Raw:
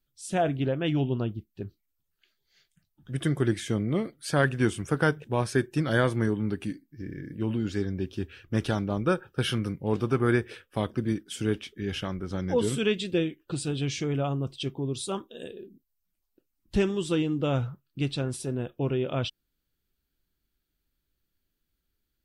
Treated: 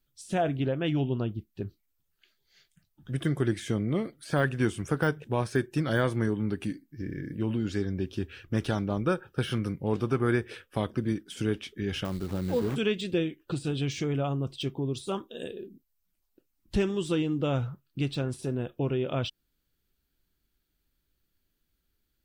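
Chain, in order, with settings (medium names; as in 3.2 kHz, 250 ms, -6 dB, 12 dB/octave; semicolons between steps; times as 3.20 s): in parallel at +2 dB: compression, threshold -32 dBFS, peak gain reduction 13.5 dB; 12.05–12.76 s: on the sum: sample-rate reducer 4.3 kHz, jitter 20%; de-esser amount 75%; trim -4.5 dB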